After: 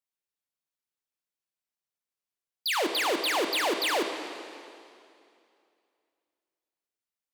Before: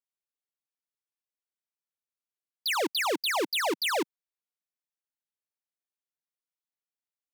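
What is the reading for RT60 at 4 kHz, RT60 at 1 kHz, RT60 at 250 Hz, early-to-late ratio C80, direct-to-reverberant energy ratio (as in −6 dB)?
2.3 s, 2.5 s, 2.6 s, 7.0 dB, 4.5 dB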